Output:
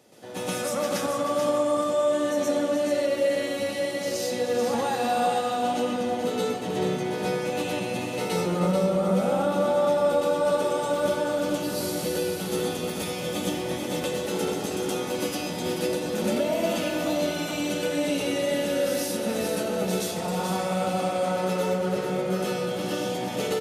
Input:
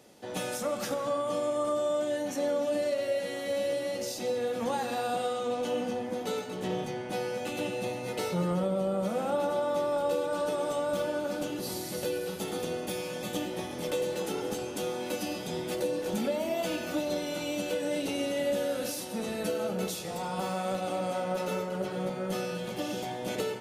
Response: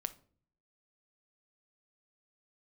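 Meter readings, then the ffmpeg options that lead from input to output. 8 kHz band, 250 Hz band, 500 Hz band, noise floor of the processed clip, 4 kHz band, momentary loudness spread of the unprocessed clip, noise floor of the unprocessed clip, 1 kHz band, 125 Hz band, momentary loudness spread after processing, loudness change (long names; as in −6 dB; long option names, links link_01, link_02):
+6.0 dB, +6.5 dB, +5.5 dB, −32 dBFS, +6.0 dB, 5 LU, −38 dBFS, +6.5 dB, +6.5 dB, 5 LU, +5.5 dB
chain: -filter_complex "[0:a]highpass=42,aecho=1:1:434|868|1302|1736:0.473|0.151|0.0485|0.0155,asplit=2[link_01][link_02];[1:a]atrim=start_sample=2205,asetrate=25137,aresample=44100,adelay=122[link_03];[link_02][link_03]afir=irnorm=-1:irlink=0,volume=3.5dB[link_04];[link_01][link_04]amix=inputs=2:normalize=0,volume=-1.5dB"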